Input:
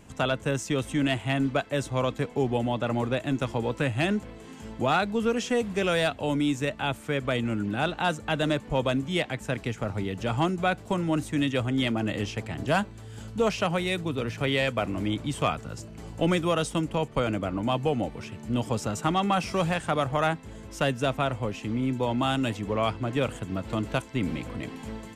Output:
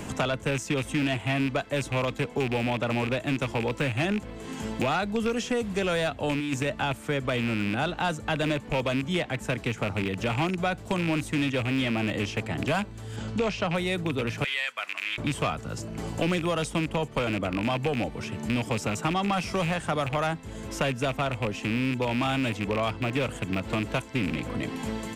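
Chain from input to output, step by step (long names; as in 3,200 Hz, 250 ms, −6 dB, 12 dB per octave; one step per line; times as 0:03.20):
loose part that buzzes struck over −28 dBFS, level −21 dBFS
0:06.32–0:06.92: compressor whose output falls as the input rises −27 dBFS, ratio −0.5
0:14.44–0:15.18: Chebyshev high-pass filter 2,000 Hz, order 2
soft clipping −17.5 dBFS, distortion −20 dB
0:13.16–0:13.75: high-frequency loss of the air 87 metres
multiband upward and downward compressor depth 70%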